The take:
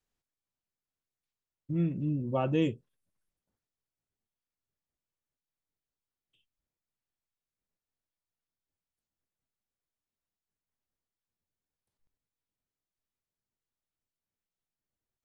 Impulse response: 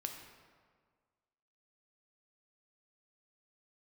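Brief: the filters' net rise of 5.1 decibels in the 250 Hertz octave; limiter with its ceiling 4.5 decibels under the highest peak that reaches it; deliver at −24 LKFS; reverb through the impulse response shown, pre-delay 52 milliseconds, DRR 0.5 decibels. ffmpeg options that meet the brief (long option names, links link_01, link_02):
-filter_complex "[0:a]equalizer=frequency=250:width_type=o:gain=7.5,alimiter=limit=-18dB:level=0:latency=1,asplit=2[link_01][link_02];[1:a]atrim=start_sample=2205,adelay=52[link_03];[link_02][link_03]afir=irnorm=-1:irlink=0,volume=0.5dB[link_04];[link_01][link_04]amix=inputs=2:normalize=0,volume=2dB"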